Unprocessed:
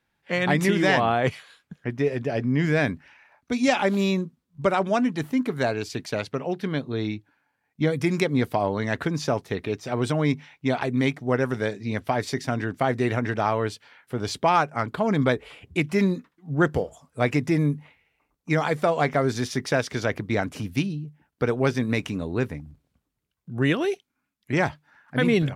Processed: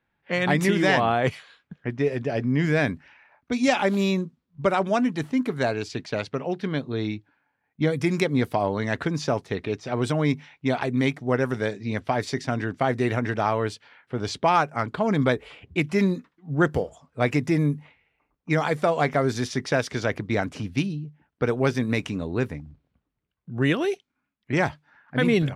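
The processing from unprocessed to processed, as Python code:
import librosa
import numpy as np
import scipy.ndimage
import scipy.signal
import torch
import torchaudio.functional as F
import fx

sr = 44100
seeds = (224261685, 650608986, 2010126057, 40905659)

y = fx.env_lowpass(x, sr, base_hz=2700.0, full_db=-20.0)
y = fx.quant_float(y, sr, bits=8)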